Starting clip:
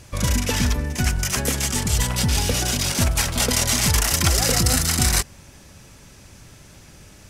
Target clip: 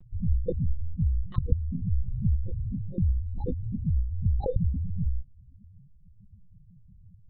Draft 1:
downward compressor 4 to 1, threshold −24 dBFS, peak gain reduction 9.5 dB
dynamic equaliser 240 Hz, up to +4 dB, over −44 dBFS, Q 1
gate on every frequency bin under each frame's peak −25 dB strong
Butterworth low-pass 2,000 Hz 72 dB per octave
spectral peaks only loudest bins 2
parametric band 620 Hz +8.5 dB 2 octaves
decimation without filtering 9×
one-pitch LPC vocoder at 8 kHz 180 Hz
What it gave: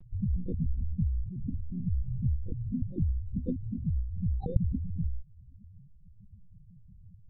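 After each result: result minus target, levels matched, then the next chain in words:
downward compressor: peak gain reduction +5 dB; 250 Hz band +3.5 dB
downward compressor 4 to 1, threshold −17 dBFS, peak gain reduction 4.5 dB
dynamic equaliser 240 Hz, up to +4 dB, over −44 dBFS, Q 1
gate on every frequency bin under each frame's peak −25 dB strong
Butterworth low-pass 2,000 Hz 72 dB per octave
spectral peaks only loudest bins 2
parametric band 620 Hz +8.5 dB 2 octaves
decimation without filtering 9×
one-pitch LPC vocoder at 8 kHz 180 Hz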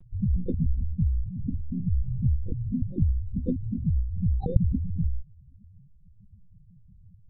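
250 Hz band +3.5 dB
downward compressor 4 to 1, threshold −17 dBFS, peak gain reduction 4.5 dB
gate on every frequency bin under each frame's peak −25 dB strong
Butterworth low-pass 2,000 Hz 72 dB per octave
spectral peaks only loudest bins 2
parametric band 620 Hz +8.5 dB 2 octaves
decimation without filtering 9×
one-pitch LPC vocoder at 8 kHz 180 Hz

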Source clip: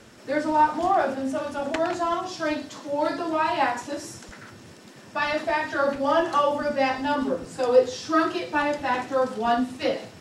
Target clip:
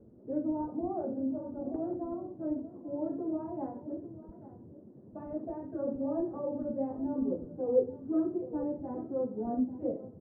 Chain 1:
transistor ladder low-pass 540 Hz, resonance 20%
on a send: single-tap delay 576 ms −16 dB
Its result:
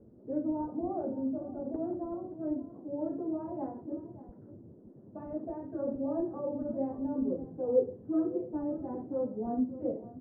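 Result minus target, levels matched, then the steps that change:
echo 262 ms early
change: single-tap delay 838 ms −16 dB

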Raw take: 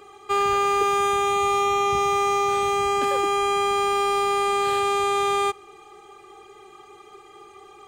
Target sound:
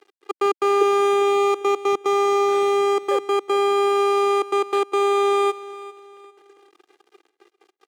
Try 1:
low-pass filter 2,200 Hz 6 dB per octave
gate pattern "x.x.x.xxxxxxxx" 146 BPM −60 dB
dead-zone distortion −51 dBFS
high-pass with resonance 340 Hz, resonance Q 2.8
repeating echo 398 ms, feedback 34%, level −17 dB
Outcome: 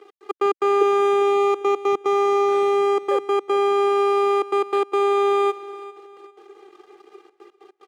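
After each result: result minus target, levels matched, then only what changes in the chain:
8,000 Hz band −7.0 dB; dead-zone distortion: distortion −6 dB
change: low-pass filter 6,600 Hz 6 dB per octave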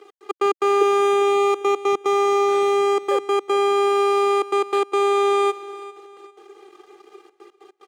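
dead-zone distortion: distortion −7 dB
change: dead-zone distortion −43 dBFS

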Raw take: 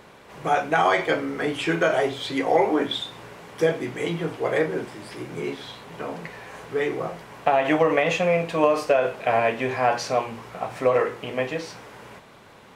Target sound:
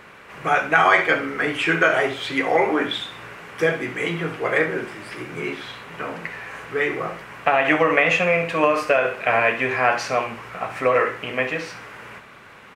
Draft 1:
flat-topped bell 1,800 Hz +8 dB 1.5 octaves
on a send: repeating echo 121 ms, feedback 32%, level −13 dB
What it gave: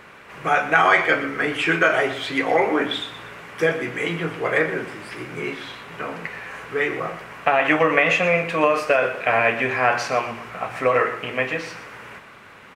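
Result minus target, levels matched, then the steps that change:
echo 54 ms late
change: repeating echo 67 ms, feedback 32%, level −13 dB

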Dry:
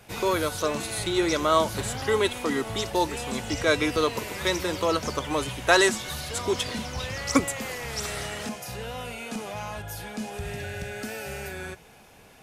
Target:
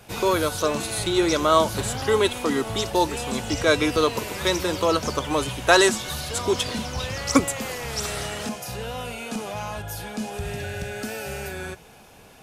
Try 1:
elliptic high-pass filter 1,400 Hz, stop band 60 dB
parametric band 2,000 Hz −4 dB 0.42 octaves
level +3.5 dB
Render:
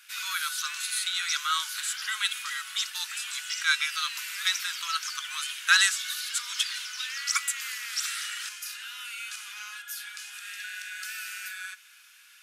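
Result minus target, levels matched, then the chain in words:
1,000 Hz band −5.5 dB
parametric band 2,000 Hz −4 dB 0.42 octaves
level +3.5 dB

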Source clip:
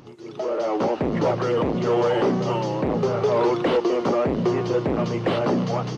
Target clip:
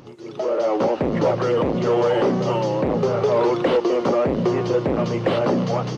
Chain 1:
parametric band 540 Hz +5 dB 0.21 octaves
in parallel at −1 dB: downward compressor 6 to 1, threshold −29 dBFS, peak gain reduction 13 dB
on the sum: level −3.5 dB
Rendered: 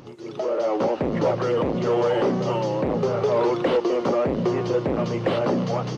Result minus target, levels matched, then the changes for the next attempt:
downward compressor: peak gain reduction +9 dB
change: downward compressor 6 to 1, threshold −18.5 dBFS, peak gain reduction 4.5 dB

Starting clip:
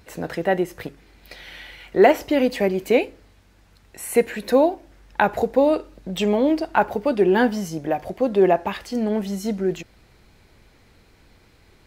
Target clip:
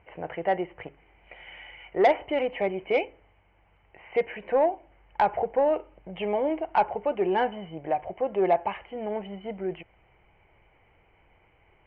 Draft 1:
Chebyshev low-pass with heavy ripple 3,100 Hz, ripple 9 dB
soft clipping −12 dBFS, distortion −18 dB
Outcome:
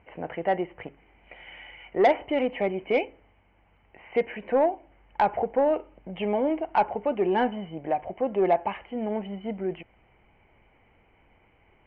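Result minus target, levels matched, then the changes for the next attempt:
250 Hz band +3.0 dB
add after Chebyshev low-pass with heavy ripple: parametric band 240 Hz −10 dB 0.43 octaves

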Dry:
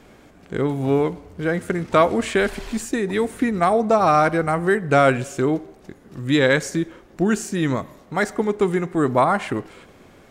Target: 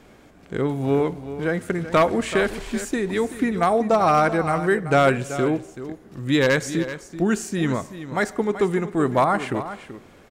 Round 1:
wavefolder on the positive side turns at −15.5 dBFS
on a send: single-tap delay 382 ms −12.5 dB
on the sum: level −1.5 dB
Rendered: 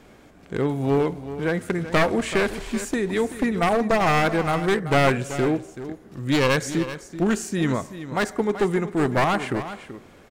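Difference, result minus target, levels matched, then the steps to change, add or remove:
wavefolder on the positive side: distortion +16 dB
change: wavefolder on the positive side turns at −8.5 dBFS

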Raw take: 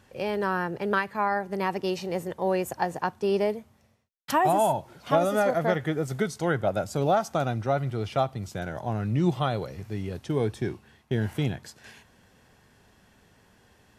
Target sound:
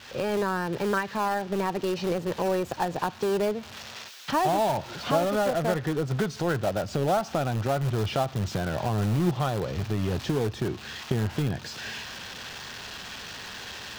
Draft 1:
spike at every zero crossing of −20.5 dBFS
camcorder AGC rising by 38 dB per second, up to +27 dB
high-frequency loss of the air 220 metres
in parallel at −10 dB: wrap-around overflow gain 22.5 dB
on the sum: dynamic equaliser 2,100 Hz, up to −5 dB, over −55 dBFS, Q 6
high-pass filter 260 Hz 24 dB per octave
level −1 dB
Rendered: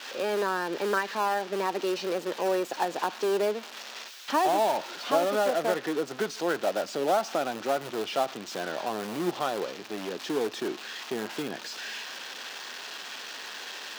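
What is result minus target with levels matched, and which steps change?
spike at every zero crossing: distortion +6 dB; 250 Hz band −3.0 dB
change: spike at every zero crossing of −26.5 dBFS
remove: high-pass filter 260 Hz 24 dB per octave

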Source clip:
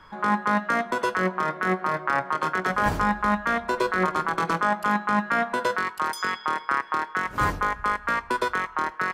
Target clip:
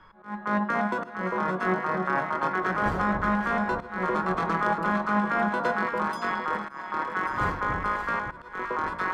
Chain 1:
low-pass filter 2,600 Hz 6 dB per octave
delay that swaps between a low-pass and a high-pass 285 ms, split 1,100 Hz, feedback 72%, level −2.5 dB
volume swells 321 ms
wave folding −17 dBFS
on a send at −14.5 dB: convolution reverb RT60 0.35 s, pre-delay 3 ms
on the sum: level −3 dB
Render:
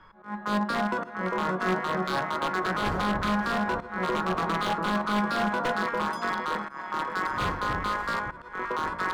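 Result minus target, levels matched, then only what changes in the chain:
wave folding: distortion +36 dB
change: wave folding −9.5 dBFS

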